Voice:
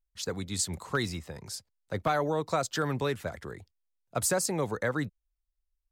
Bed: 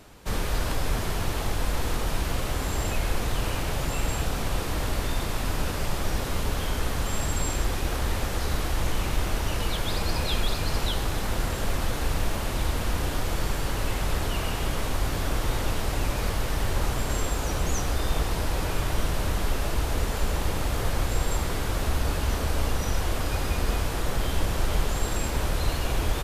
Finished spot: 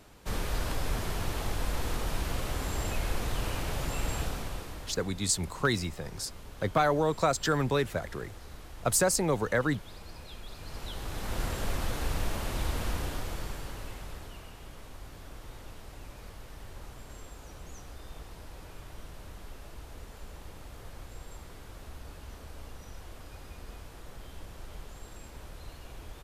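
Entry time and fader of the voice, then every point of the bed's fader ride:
4.70 s, +2.5 dB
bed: 4.22 s -5 dB
5.1 s -19.5 dB
10.42 s -19.5 dB
11.42 s -5 dB
12.87 s -5 dB
14.53 s -19.5 dB

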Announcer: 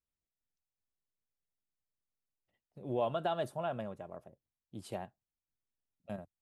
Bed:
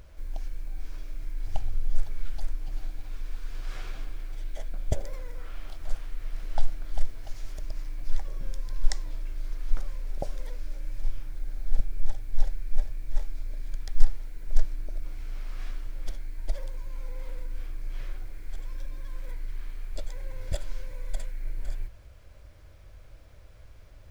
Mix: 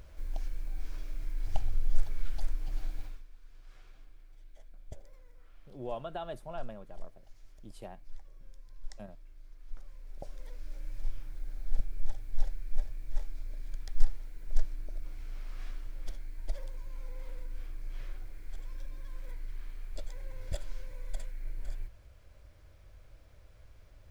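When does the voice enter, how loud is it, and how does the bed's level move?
2.90 s, -5.5 dB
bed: 3.04 s -1.5 dB
3.27 s -19 dB
9.55 s -19 dB
10.79 s -5.5 dB

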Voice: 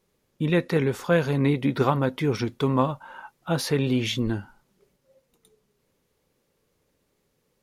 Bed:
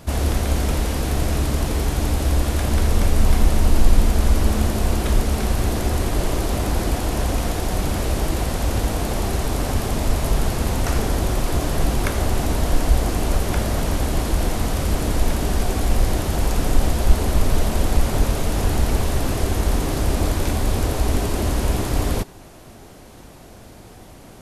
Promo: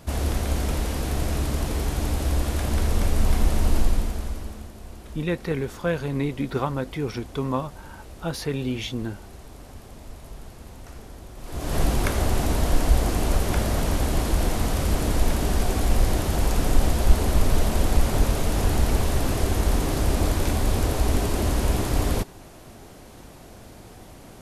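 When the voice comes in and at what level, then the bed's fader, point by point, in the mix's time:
4.75 s, -4.0 dB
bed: 3.77 s -4.5 dB
4.71 s -21 dB
11.35 s -21 dB
11.76 s -2 dB

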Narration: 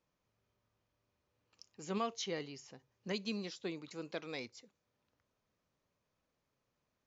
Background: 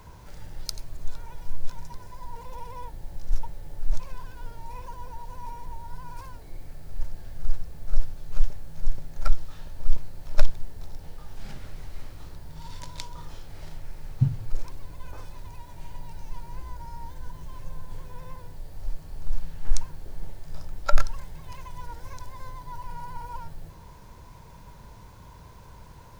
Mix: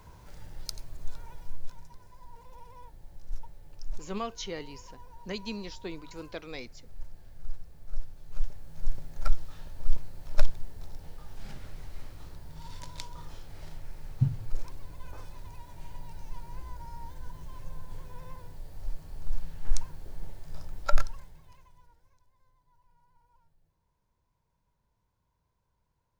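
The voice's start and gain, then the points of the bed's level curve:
2.20 s, +2.0 dB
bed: 1.29 s -4.5 dB
1.91 s -11 dB
8.02 s -11 dB
8.95 s -3.5 dB
20.94 s -3.5 dB
22.22 s -30 dB

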